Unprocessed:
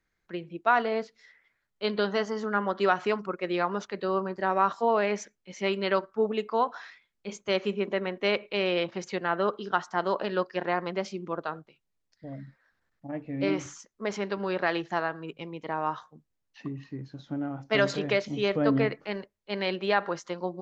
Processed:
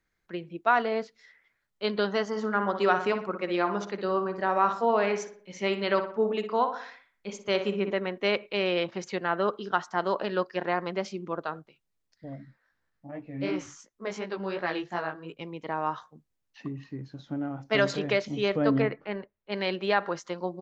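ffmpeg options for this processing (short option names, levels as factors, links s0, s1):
-filter_complex "[0:a]asplit=3[s0][s1][s2];[s0]afade=t=out:st=2.32:d=0.02[s3];[s1]asplit=2[s4][s5];[s5]adelay=60,lowpass=f=2500:p=1,volume=0.398,asplit=2[s6][s7];[s7]adelay=60,lowpass=f=2500:p=1,volume=0.49,asplit=2[s8][s9];[s9]adelay=60,lowpass=f=2500:p=1,volume=0.49,asplit=2[s10][s11];[s11]adelay=60,lowpass=f=2500:p=1,volume=0.49,asplit=2[s12][s13];[s13]adelay=60,lowpass=f=2500:p=1,volume=0.49,asplit=2[s14][s15];[s15]adelay=60,lowpass=f=2500:p=1,volume=0.49[s16];[s4][s6][s8][s10][s12][s14][s16]amix=inputs=7:normalize=0,afade=t=in:st=2.32:d=0.02,afade=t=out:st=7.91:d=0.02[s17];[s2]afade=t=in:st=7.91:d=0.02[s18];[s3][s17][s18]amix=inputs=3:normalize=0,asplit=3[s19][s20][s21];[s19]afade=t=out:st=12.35:d=0.02[s22];[s20]flanger=delay=16.5:depth=4.7:speed=2.8,afade=t=in:st=12.35:d=0.02,afade=t=out:st=15.38:d=0.02[s23];[s21]afade=t=in:st=15.38:d=0.02[s24];[s22][s23][s24]amix=inputs=3:normalize=0,asettb=1/sr,asplit=3[s25][s26][s27];[s25]atrim=end=18.824[s28];[s26]atrim=start=18.82:end=19.52,asetpts=PTS-STARTPTS,afade=t=in:d=0.004:c=qsin,afade=t=out:st=0.696:d=0.004:c=qsin,lowpass=2500[s29];[s27]atrim=start=19.516[s30];[s28][s29]acrossfade=d=0.004:c1=hsin:c2=qsin[s31];[s31][s30]acrossfade=d=0.004:c1=qsin:c2=hsin"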